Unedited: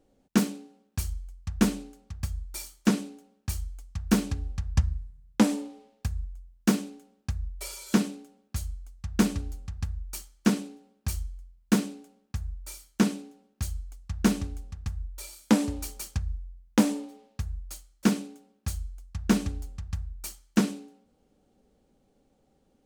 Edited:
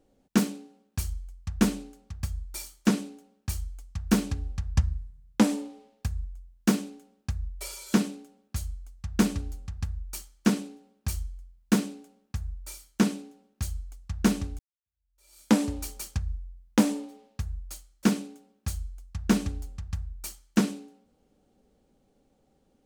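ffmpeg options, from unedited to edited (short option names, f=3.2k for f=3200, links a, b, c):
-filter_complex "[0:a]asplit=2[a][b];[a]atrim=end=14.59,asetpts=PTS-STARTPTS,afade=t=out:st=14.586:d=0.004:c=hsin[c];[b]atrim=start=14.59,asetpts=PTS-STARTPTS,afade=t=in:d=0.82:c=exp[d];[c][d]concat=n=2:v=0:a=1"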